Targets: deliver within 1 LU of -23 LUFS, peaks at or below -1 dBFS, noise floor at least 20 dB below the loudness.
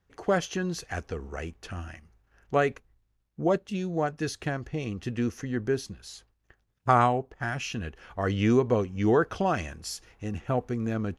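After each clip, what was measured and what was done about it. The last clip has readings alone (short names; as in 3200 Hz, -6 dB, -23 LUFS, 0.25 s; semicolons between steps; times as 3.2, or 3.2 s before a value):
loudness -29.0 LUFS; peak -8.0 dBFS; loudness target -23.0 LUFS
-> gain +6 dB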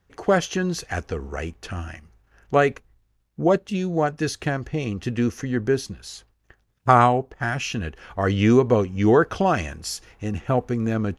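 loudness -23.0 LUFS; peak -2.0 dBFS; noise floor -68 dBFS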